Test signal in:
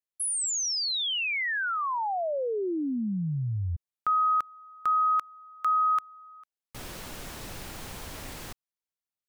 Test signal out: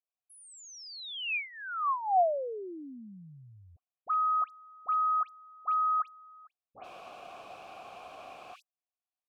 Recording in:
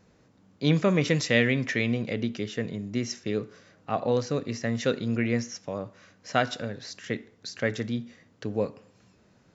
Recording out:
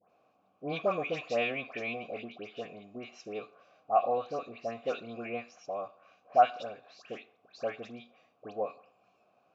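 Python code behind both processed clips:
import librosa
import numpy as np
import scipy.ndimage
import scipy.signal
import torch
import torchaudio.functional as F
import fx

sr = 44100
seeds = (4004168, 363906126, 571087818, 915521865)

y = fx.vowel_filter(x, sr, vowel='a')
y = fx.dispersion(y, sr, late='highs', ms=102.0, hz=1800.0)
y = y * librosa.db_to_amplitude(7.5)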